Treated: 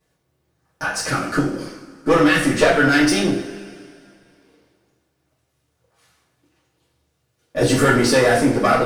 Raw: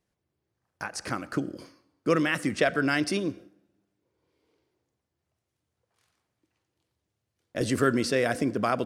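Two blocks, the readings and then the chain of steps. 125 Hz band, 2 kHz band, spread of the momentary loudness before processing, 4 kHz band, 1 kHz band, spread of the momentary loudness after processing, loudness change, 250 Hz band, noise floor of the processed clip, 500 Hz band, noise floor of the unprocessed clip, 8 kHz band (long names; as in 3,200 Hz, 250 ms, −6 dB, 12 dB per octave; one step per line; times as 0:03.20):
+10.5 dB, +11.0 dB, 12 LU, +11.0 dB, +11.0 dB, 15 LU, +10.0 dB, +10.0 dB, −70 dBFS, +10.0 dB, −83 dBFS, +12.5 dB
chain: one-sided soft clipper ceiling −24.5 dBFS
coupled-rooms reverb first 0.45 s, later 2.4 s, from −19 dB, DRR −9.5 dB
level +3.5 dB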